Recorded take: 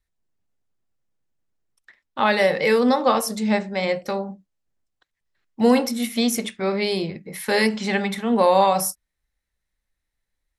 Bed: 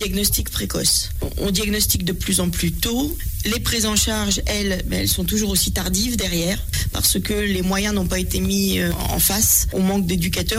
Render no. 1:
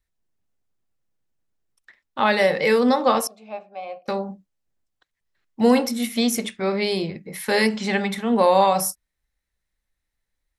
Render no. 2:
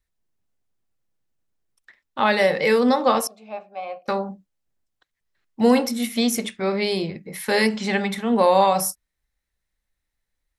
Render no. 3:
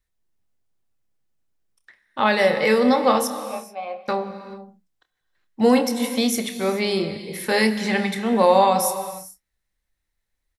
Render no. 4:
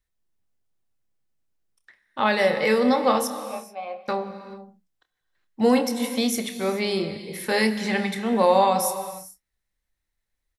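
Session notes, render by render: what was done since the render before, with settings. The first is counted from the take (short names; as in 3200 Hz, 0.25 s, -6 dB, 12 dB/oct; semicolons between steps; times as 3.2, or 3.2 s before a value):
3.27–4.08 vowel filter a
3.56–4.29 dynamic EQ 1300 Hz, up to +6 dB, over -43 dBFS, Q 1.1
doubler 28 ms -13 dB; non-linear reverb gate 0.46 s flat, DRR 10 dB
gain -2.5 dB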